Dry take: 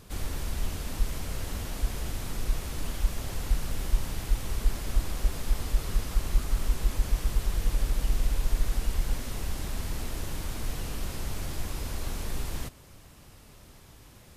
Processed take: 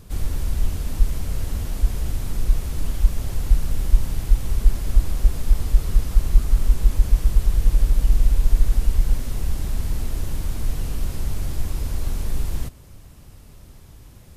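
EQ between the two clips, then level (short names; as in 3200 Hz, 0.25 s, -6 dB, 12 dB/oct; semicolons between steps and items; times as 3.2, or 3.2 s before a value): low shelf 180 Hz +12 dB; bell 440 Hz +2 dB 2.6 oct; high shelf 6800 Hz +5 dB; -1.5 dB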